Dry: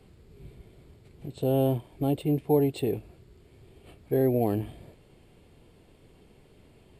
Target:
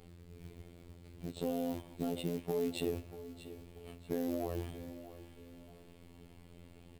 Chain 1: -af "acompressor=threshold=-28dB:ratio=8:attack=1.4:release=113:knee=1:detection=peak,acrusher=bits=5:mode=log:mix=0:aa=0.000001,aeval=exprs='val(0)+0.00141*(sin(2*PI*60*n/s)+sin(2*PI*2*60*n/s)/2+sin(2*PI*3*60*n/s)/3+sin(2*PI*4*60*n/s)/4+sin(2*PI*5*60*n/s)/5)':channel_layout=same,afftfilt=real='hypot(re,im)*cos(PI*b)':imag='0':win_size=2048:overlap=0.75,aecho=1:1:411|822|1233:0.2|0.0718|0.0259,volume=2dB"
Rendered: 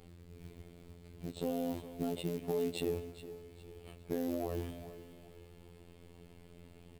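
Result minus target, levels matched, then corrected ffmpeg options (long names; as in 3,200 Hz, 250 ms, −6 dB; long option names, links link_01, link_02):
echo 224 ms early
-af "acompressor=threshold=-28dB:ratio=8:attack=1.4:release=113:knee=1:detection=peak,acrusher=bits=5:mode=log:mix=0:aa=0.000001,aeval=exprs='val(0)+0.00141*(sin(2*PI*60*n/s)+sin(2*PI*2*60*n/s)/2+sin(2*PI*3*60*n/s)/3+sin(2*PI*4*60*n/s)/4+sin(2*PI*5*60*n/s)/5)':channel_layout=same,afftfilt=real='hypot(re,im)*cos(PI*b)':imag='0':win_size=2048:overlap=0.75,aecho=1:1:635|1270|1905:0.2|0.0718|0.0259,volume=2dB"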